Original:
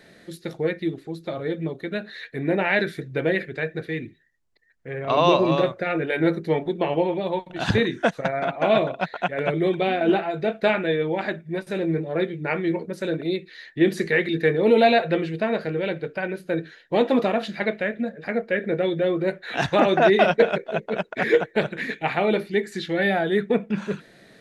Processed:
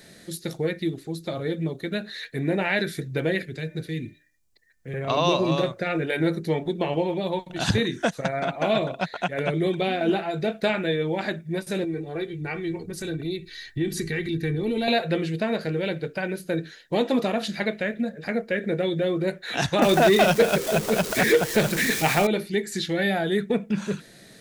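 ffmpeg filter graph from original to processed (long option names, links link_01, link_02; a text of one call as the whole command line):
ffmpeg -i in.wav -filter_complex "[0:a]asettb=1/sr,asplit=3[link_01][link_02][link_03];[link_01]atrim=end=3.424[link_04];[link_02]atrim=start=3.42:end=4.94,asetpts=PTS-STARTPTS,afade=type=in:duration=0.004:curve=qsin,afade=type=out:start_time=1.516:duration=0.004:curve=qsin,bandreject=frequency=299.7:width_type=h:width=4,bandreject=frequency=599.4:width_type=h:width=4,bandreject=frequency=899.1:width_type=h:width=4,bandreject=frequency=1198.8:width_type=h:width=4,bandreject=frequency=1498.5:width_type=h:width=4,bandreject=frequency=1798.2:width_type=h:width=4,bandreject=frequency=2097.9:width_type=h:width=4,bandreject=frequency=2397.6:width_type=h:width=4,acrossover=split=380|3000[link_05][link_06][link_07];[link_06]acompressor=threshold=-49dB:ratio=2:attack=3.2:release=140:knee=2.83:detection=peak[link_08];[link_05][link_08][link_07]amix=inputs=3:normalize=0[link_09];[link_03]atrim=start=4.936[link_10];[link_04][link_09]acrossfade=duration=0.004:curve1=hsin:curve2=qsin[link_11];[link_11][link_10]acrossfade=duration=0.004:curve1=qsin:curve2=hsin,asettb=1/sr,asplit=3[link_12][link_13][link_14];[link_12]atrim=end=11.844[link_15];[link_13]atrim=start=11.84:end=14.88,asetpts=PTS-STARTPTS,afade=type=in:duration=0.004:curve=qsin,afade=type=out:start_time=3.036:duration=0.004:curve=qsin,asubboost=boost=12:cutoff=170,aecho=1:1:2.6:0.6,atrim=end_sample=134064,acompressor=threshold=-38dB:ratio=1.5:attack=3.2:release=140:knee=1:detection=peak[link_16];[link_14]atrim=start=14.876[link_17];[link_15][link_16]acrossfade=duration=0.004:curve1=hsin:curve2=qsin[link_18];[link_18][link_17]acrossfade=duration=0.004:curve1=qsin:curve2=hsin,asettb=1/sr,asplit=3[link_19][link_20][link_21];[link_19]atrim=end=19.824[link_22];[link_20]atrim=start=19.82:end=22.27,asetpts=PTS-STARTPTS,afade=type=in:duration=0.004:curve=qsin,afade=type=out:start_time=2.446:duration=0.004:curve=qsin,aeval=exprs='val(0)+0.5*0.0266*sgn(val(0))':channel_layout=same,acontrast=38[link_23];[link_21]atrim=start=22.266[link_24];[link_22][link_23]acrossfade=duration=0.004:curve1=hsin:curve2=qsin[link_25];[link_25][link_24]acrossfade=duration=0.004:curve1=qsin:curve2=hsin,bass=frequency=250:gain=5,treble=frequency=4000:gain=13,acompressor=threshold=-23dB:ratio=1.5,volume=-1dB" out.wav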